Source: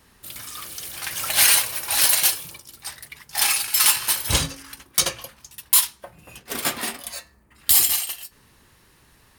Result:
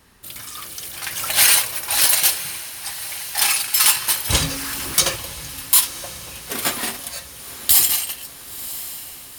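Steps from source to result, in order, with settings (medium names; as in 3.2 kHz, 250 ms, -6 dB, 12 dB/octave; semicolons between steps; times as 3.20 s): 4.42–5.16 s: jump at every zero crossing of -28 dBFS; echo that smears into a reverb 1003 ms, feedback 59%, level -14 dB; trim +2 dB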